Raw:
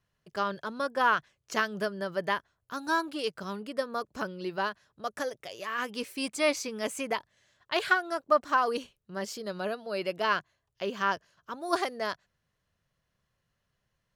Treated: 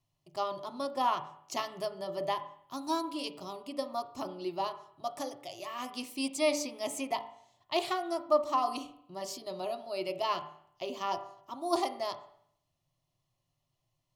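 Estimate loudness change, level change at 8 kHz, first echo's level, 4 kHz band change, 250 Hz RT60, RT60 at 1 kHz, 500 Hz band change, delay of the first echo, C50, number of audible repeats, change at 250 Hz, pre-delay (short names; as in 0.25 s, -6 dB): -3.5 dB, -0.5 dB, none, -2.0 dB, 0.65 s, 0.65 s, -2.0 dB, none, 12.5 dB, none, -1.5 dB, 7 ms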